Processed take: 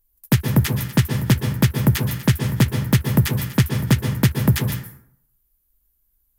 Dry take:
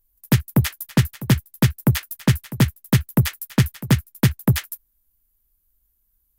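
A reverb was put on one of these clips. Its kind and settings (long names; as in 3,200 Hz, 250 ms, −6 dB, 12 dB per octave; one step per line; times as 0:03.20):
dense smooth reverb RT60 0.68 s, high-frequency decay 0.55×, pre-delay 110 ms, DRR 5 dB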